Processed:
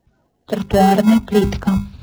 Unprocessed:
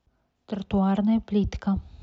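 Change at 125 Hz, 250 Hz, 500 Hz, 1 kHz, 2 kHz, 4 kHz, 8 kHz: +8.5 dB, +8.5 dB, +14.5 dB, +15.5 dB, +15.5 dB, +14.5 dB, no reading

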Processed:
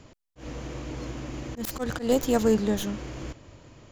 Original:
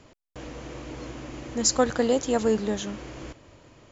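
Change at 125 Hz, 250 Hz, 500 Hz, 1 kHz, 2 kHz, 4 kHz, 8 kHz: +3.5 dB, +1.0 dB, -1.5 dB, -3.5 dB, -2.0 dB, -5.5 dB, no reading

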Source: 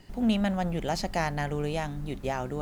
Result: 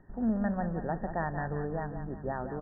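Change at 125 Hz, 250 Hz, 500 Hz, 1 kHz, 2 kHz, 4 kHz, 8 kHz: -3.5 dB, -3.5 dB, -3.5 dB, -3.5 dB, -5.0 dB, under -40 dB, under -35 dB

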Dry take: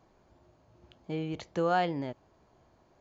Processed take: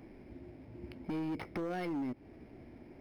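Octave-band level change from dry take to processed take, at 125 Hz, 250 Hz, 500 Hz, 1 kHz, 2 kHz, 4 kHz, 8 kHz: -6.5 dB, -1.0 dB, -9.0 dB, -13.0 dB, -8.5 dB, -11.0 dB, no reading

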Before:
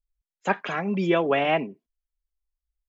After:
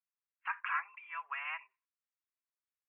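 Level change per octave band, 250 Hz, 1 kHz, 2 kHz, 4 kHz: under -40 dB, -12.5 dB, -8.5 dB, -18.5 dB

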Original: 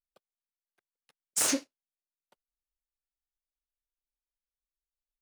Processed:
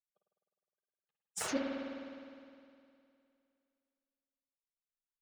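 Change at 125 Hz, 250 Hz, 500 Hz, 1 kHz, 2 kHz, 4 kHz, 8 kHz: -1.0 dB, -1.5 dB, +1.5 dB, -2.0 dB, -4.5 dB, -10.0 dB, -13.5 dB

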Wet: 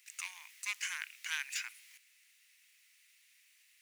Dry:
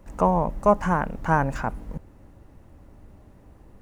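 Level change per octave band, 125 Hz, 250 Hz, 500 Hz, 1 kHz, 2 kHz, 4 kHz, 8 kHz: under -40 dB, under -40 dB, under -40 dB, -31.5 dB, -6.5 dB, +9.5 dB, +7.5 dB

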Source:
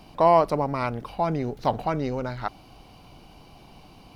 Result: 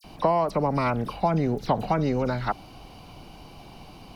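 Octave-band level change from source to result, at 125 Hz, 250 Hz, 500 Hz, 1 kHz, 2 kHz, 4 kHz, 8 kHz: +3.5 dB, +3.0 dB, -2.0 dB, -2.0 dB, +1.5 dB, +1.0 dB, no reading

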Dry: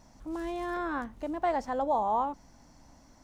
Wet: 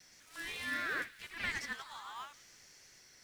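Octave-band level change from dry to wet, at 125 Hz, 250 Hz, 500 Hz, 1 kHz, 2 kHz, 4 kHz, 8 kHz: -6.5 dB, -17.5 dB, -21.5 dB, -17.0 dB, +5.5 dB, +8.5 dB, no reading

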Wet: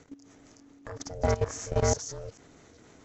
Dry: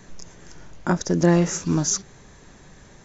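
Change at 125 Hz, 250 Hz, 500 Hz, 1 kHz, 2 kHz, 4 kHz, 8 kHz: -8.0 dB, -17.5 dB, -4.0 dB, -4.5 dB, -8.5 dB, -8.0 dB, no reading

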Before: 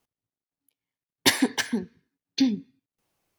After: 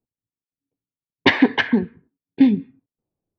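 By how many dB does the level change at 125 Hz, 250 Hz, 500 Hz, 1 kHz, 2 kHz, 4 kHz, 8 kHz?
+9.0 dB, +8.5 dB, +9.0 dB, +8.5 dB, +8.0 dB, +0.5 dB, under -20 dB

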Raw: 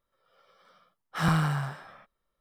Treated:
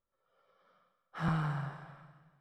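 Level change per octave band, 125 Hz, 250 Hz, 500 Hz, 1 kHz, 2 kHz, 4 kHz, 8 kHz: -7.0 dB, -7.0 dB, -7.0 dB, -8.0 dB, -9.5 dB, -13.5 dB, under -15 dB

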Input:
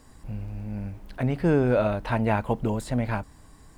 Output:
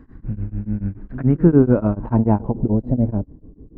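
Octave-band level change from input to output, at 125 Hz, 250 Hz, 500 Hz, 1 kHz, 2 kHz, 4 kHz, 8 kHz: +8.0 dB, +10.0 dB, +3.5 dB, 0.0 dB, -7.5 dB, under -20 dB, no reading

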